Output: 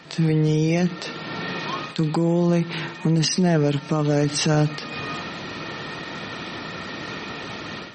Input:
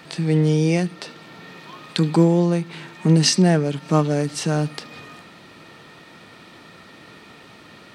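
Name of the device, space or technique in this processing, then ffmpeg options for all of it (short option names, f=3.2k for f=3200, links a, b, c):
low-bitrate web radio: -af "dynaudnorm=f=150:g=3:m=13.5dB,alimiter=limit=-10.5dB:level=0:latency=1:release=62,volume=-1dB" -ar 48000 -c:a libmp3lame -b:a 32k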